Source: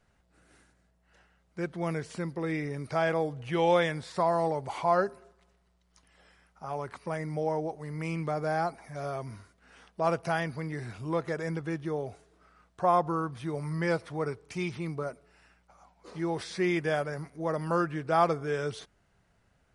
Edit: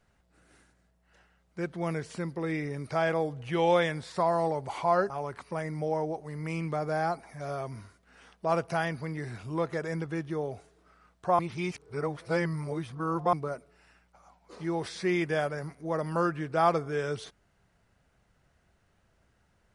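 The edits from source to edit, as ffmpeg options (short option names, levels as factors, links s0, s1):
-filter_complex "[0:a]asplit=4[s0][s1][s2][s3];[s0]atrim=end=5.102[s4];[s1]atrim=start=6.648:end=12.942[s5];[s2]atrim=start=12.938:end=14.882,asetpts=PTS-STARTPTS,areverse[s6];[s3]atrim=start=14.878[s7];[s4][s5]acrossfade=d=0.004:c1=hsin:c2=hsin[s8];[s8][s6]acrossfade=d=0.004:c1=hsin:c2=hsin[s9];[s9][s7]acrossfade=d=0.004:c1=hsin:c2=hsin"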